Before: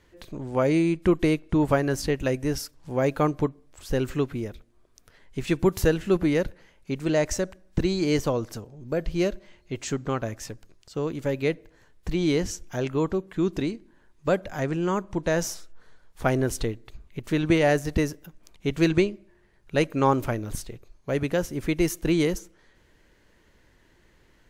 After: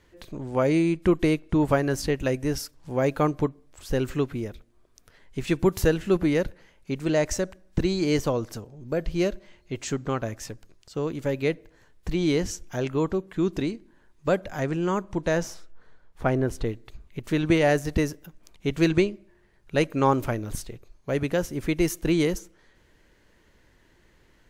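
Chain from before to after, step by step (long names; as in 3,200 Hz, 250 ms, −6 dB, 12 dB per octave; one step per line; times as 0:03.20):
0:15.37–0:16.65: high-shelf EQ 5,200 Hz → 2,700 Hz −11.5 dB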